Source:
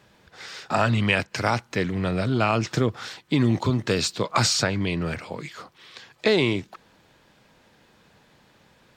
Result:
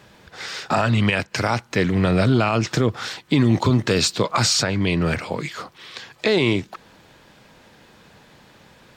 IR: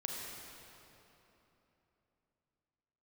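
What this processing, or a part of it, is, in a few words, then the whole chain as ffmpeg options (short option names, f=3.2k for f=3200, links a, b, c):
stacked limiters: -af "alimiter=limit=-12dB:level=0:latency=1:release=489,alimiter=limit=-15.5dB:level=0:latency=1:release=29,volume=7.5dB"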